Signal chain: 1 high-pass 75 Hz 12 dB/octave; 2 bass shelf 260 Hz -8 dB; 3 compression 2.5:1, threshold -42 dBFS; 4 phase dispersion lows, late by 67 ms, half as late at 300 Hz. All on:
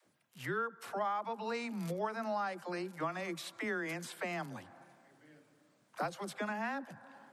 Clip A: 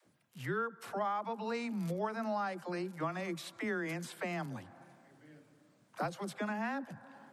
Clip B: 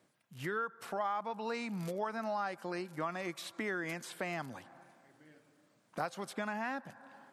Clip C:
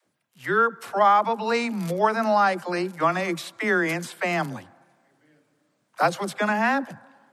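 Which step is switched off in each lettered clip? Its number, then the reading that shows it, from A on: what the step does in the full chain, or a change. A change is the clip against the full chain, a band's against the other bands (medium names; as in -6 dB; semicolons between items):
2, 125 Hz band +4.5 dB; 4, momentary loudness spread change +2 LU; 3, mean gain reduction 12.5 dB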